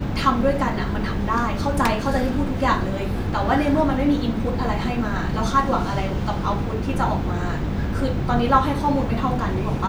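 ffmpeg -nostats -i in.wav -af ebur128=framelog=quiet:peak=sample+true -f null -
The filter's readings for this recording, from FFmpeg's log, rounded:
Integrated loudness:
  I:         -22.2 LUFS
  Threshold: -32.2 LUFS
Loudness range:
  LRA:         1.7 LU
  Threshold: -42.3 LUFS
  LRA low:   -23.3 LUFS
  LRA high:  -21.6 LUFS
Sample peak:
  Peak:       -2.3 dBFS
True peak:
  Peak:       -2.3 dBFS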